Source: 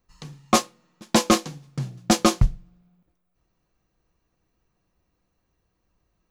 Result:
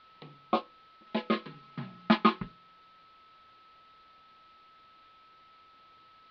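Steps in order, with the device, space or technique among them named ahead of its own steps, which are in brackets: shortwave radio (band-pass 260–2800 Hz; tremolo 0.52 Hz, depth 79%; LFO notch sine 0.38 Hz 460–1900 Hz; whistle 1.3 kHz -55 dBFS; white noise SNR 20 dB); steep low-pass 4.3 kHz 48 dB/octave; 1.06–2.52 s: comb 4.8 ms, depth 83%; trim -1.5 dB

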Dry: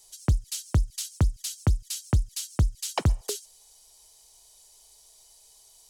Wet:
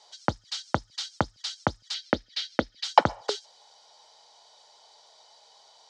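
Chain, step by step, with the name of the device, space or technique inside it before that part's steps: phone earpiece (cabinet simulation 340–4400 Hz, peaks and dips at 390 Hz -7 dB, 560 Hz +4 dB, 850 Hz +7 dB, 1.4 kHz +5 dB, 2.6 kHz -8 dB); 1.94–2.84 s: graphic EQ 125/250/500/1000/2000/4000/8000 Hz -11/+6/+6/-9/+7/+5/-11 dB; trim +8.5 dB

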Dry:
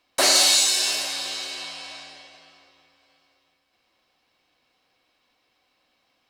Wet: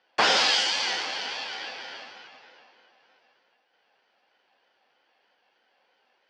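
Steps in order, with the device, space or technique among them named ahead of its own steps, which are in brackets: voice changer toy (ring modulator with a swept carrier 650 Hz, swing 25%, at 3.2 Hz; cabinet simulation 470–4100 Hz, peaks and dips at 530 Hz +4 dB, 770 Hz +8 dB, 1.2 kHz -8 dB, 2.2 kHz -4 dB, 3.7 kHz -10 dB); trim +7 dB

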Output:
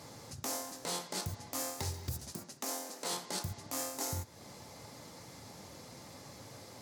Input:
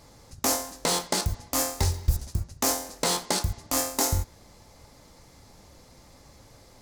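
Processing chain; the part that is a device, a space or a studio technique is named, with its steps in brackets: 2.32–3.13 s: high-pass 200 Hz 24 dB/octave; podcast mastering chain (high-pass 97 Hz 24 dB/octave; compression 2.5:1, threshold -41 dBFS, peak gain reduction 13.5 dB; peak limiter -29 dBFS, peak gain reduction 10 dB; trim +3.5 dB; MP3 96 kbps 44.1 kHz)

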